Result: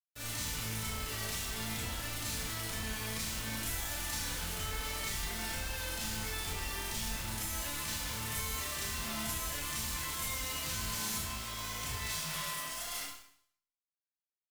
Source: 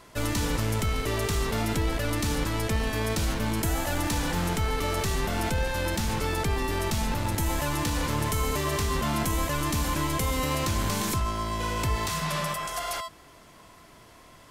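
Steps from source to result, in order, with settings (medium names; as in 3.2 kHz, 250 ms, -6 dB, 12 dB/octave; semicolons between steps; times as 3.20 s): amplifier tone stack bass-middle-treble 5-5-5; bit crusher 7-bit; vibrato 0.62 Hz 16 cents; Schroeder reverb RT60 0.62 s, combs from 25 ms, DRR -7.5 dB; trim -6 dB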